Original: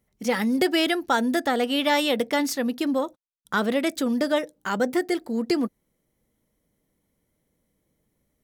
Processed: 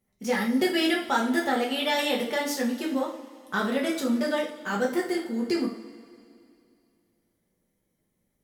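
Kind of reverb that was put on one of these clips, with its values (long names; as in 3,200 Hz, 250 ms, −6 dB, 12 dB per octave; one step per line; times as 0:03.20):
coupled-rooms reverb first 0.39 s, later 2.5 s, from −19 dB, DRR −3.5 dB
level −7 dB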